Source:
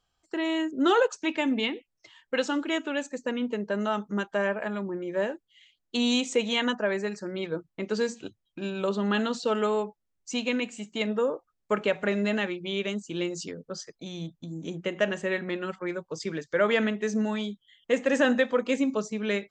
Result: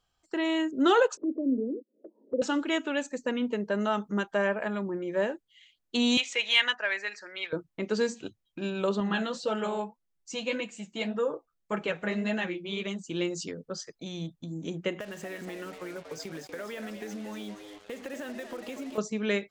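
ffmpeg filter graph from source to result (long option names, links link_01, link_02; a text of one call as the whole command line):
ffmpeg -i in.wav -filter_complex "[0:a]asettb=1/sr,asplit=3[link_01][link_02][link_03];[link_01]atrim=end=1.174[link_04];[link_02]atrim=start=1.17:end=2.42,asetpts=PTS-STARTPTS,afade=type=in:duration=0.004:curve=qsin,afade=type=out:start_time=1.246:duration=0.004:curve=qsin,asuperpass=centerf=350:order=12:qfactor=0.99,acompressor=mode=upward:threshold=-28dB:ratio=2.5:attack=3.2:release=140:knee=2.83:detection=peak[link_05];[link_03]atrim=start=2.416[link_06];[link_04][link_05]acrossfade=duration=0.004:curve1=hsin:curve2=qsin[link_07];[link_07][link_06]acrossfade=duration=0.004:curve1=qsin:curve2=hsin,asettb=1/sr,asplit=3[link_08][link_09][link_10];[link_08]atrim=end=6.174[link_11];[link_09]atrim=start=6.17:end=7.53,asetpts=PTS-STARTPTS,afade=type=in:duration=0.004:curve=qsin,afade=type=out:start_time=1.356:duration=0.004:curve=qsin,adynamicsmooth=sensitivity=0.5:basefreq=4300,highpass=900,highshelf=frequency=1500:width_type=q:width=1.5:gain=6.5[link_12];[link_10]atrim=start=7.526[link_13];[link_11][link_12]acrossfade=duration=0.004:curve1=hsin:curve2=qsin[link_14];[link_14][link_13]acrossfade=duration=0.004:curve1=qsin:curve2=hsin,asettb=1/sr,asplit=3[link_15][link_16][link_17];[link_15]atrim=end=9.004[link_18];[link_16]atrim=start=9:end=13.04,asetpts=PTS-STARTPTS,afade=type=in:duration=0.004:curve=qsin,afade=type=out:start_time=4.036:duration=0.004:curve=qsin,aecho=1:1:6:0.44,atrim=end_sample=178164,flanger=delay=4.8:depth=9.5:regen=-38:speed=1.8:shape=sinusoidal[link_19];[link_17]atrim=start=13.036[link_20];[link_18][link_19]acrossfade=duration=0.004:curve1=hsin:curve2=qsin[link_21];[link_21][link_20]acrossfade=duration=0.004:curve1=qsin:curve2=hsin,asettb=1/sr,asplit=3[link_22][link_23][link_24];[link_22]atrim=end=15.004[link_25];[link_23]atrim=start=15:end=18.98,asetpts=PTS-STARTPTS,afade=type=in:duration=0.004:curve=qsin,afade=type=out:start_time=3.976:duration=0.004:curve=qsin,acompressor=threshold=-35dB:ratio=12:attack=3.2:release=140:knee=1:detection=peak,asplit=7[link_26][link_27][link_28][link_29][link_30][link_31][link_32];[link_27]adelay=237,afreqshift=99,volume=-9dB[link_33];[link_28]adelay=474,afreqshift=198,volume=-15.2dB[link_34];[link_29]adelay=711,afreqshift=297,volume=-21.4dB[link_35];[link_30]adelay=948,afreqshift=396,volume=-27.6dB[link_36];[link_31]adelay=1185,afreqshift=495,volume=-33.8dB[link_37];[link_32]adelay=1422,afreqshift=594,volume=-40dB[link_38];[link_26][link_33][link_34][link_35][link_36][link_37][link_38]amix=inputs=7:normalize=0,atrim=end_sample=175518,acrusher=bits=7:mix=0:aa=0.5[link_39];[link_24]atrim=start=18.976[link_40];[link_25][link_39]acrossfade=duration=0.004:curve1=hsin:curve2=qsin[link_41];[link_41][link_40]acrossfade=duration=0.004:curve1=qsin:curve2=hsin" out.wav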